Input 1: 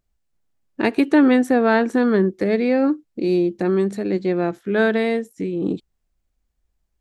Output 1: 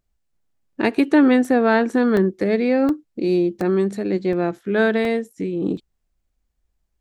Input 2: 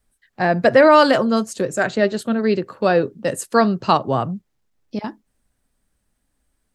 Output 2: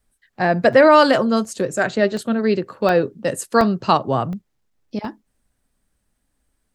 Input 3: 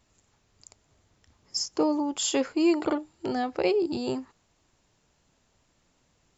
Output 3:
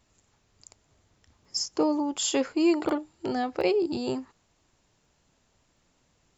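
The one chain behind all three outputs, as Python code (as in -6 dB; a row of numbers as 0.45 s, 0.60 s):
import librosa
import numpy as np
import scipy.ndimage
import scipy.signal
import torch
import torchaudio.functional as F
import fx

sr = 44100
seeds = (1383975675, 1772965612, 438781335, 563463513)

y = fx.buffer_crackle(x, sr, first_s=0.73, period_s=0.72, block=64, kind='zero')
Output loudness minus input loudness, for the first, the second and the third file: 0.0 LU, 0.0 LU, 0.0 LU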